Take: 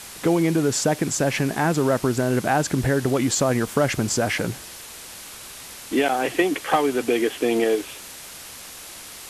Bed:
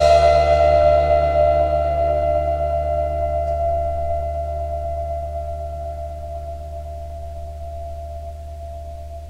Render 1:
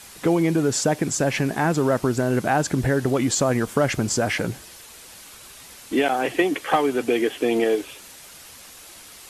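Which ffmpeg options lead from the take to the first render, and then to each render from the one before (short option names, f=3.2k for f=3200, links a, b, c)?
-af "afftdn=nr=6:nf=-40"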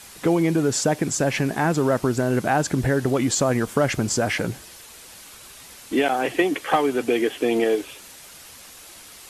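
-af anull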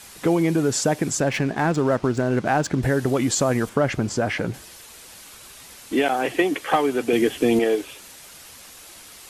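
-filter_complex "[0:a]asettb=1/sr,asplit=3[a][b][c];[a]atrim=end=1.204[d];[b]atrim=start=1.2:end=2.83,asetpts=PTS-STARTPTS,afade=t=in:d=0.004:c=qsin,afade=t=out:st=1.626:d=0.004:c=qsin,adynamicsmooth=sensitivity=5.5:basefreq=3.7k[e];[c]atrim=start=2.826[f];[d][e]acrossfade=d=0.004:c1=hsin:c2=qsin[g];[g][f]acrossfade=d=0.004:c1=qsin:c2=hsin,asettb=1/sr,asplit=3[h][i][j];[h]atrim=end=3.694[k];[i]atrim=start=3.69:end=4.54,asetpts=PTS-STARTPTS,afade=t=in:d=0.004:c=qsin,afade=t=out:st=0.846:d=0.004:c=qsin,lowpass=f=2.9k:p=1[l];[j]atrim=start=4.536[m];[k][l]acrossfade=d=0.004:c1=hsin:c2=qsin[n];[n][m]acrossfade=d=0.004:c1=qsin:c2=hsin,asettb=1/sr,asplit=3[o][p][q];[o]atrim=end=7.134[r];[p]atrim=start=7.13:end=7.59,asetpts=PTS-STARTPTS,afade=t=in:d=0.004:c=qsin,afade=t=out:st=0.456:d=0.004:c=qsin,bass=f=250:g=11,treble=f=4k:g=4[s];[q]atrim=start=7.586[t];[r][s]acrossfade=d=0.004:c1=hsin:c2=qsin[u];[u][t]acrossfade=d=0.004:c1=qsin:c2=hsin"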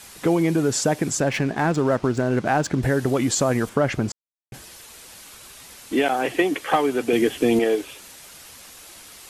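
-filter_complex "[0:a]asplit=3[a][b][c];[a]atrim=end=4.12,asetpts=PTS-STARTPTS,afade=t=out:st=4.116:d=0.004:c=hsin[d];[b]atrim=start=4.12:end=4.52,asetpts=PTS-STARTPTS,volume=0[e];[c]atrim=start=4.52,asetpts=PTS-STARTPTS,afade=t=in:d=0.004:c=hsin[f];[d][e][f]concat=n=3:v=0:a=1"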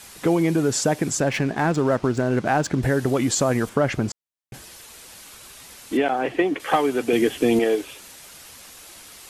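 -filter_complex "[0:a]asettb=1/sr,asplit=3[a][b][c];[a]atrim=end=5.974[d];[b]atrim=start=5.97:end=6.6,asetpts=PTS-STARTPTS,afade=t=in:d=0.004:c=qsin,afade=t=out:st=0.626:d=0.004:c=qsin,aemphasis=mode=reproduction:type=75kf[e];[c]atrim=start=6.596[f];[d][e]acrossfade=d=0.004:c1=hsin:c2=qsin[g];[g][f]acrossfade=d=0.004:c1=qsin:c2=hsin"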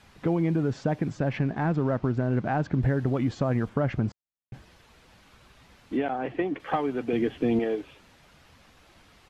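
-filter_complex "[0:a]acrossover=split=5400[a][b];[b]acompressor=threshold=-45dB:ratio=4:attack=1:release=60[c];[a][c]amix=inputs=2:normalize=0,firequalizer=gain_entry='entry(120,0);entry(380,-8);entry(720,-7);entry(8800,-25)':delay=0.05:min_phase=1"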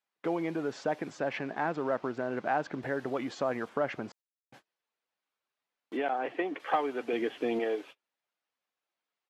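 -af "agate=range=-32dB:threshold=-43dB:ratio=16:detection=peak,highpass=440"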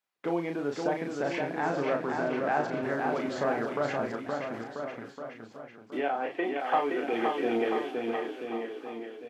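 -filter_complex "[0:a]asplit=2[a][b];[b]adelay=35,volume=-5dB[c];[a][c]amix=inputs=2:normalize=0,aecho=1:1:520|988|1409|1788|2129:0.631|0.398|0.251|0.158|0.1"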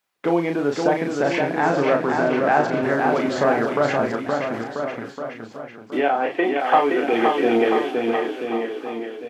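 -af "volume=10dB"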